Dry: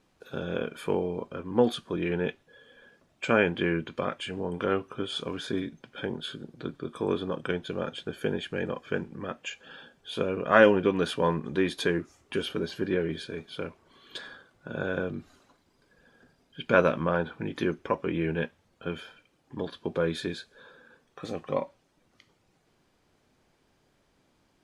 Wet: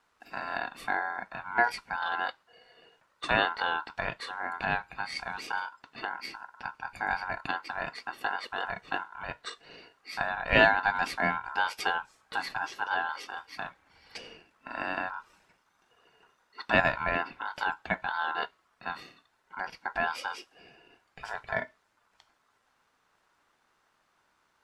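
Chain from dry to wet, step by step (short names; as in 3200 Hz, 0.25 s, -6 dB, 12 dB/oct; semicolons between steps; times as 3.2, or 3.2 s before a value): ring modulator 1200 Hz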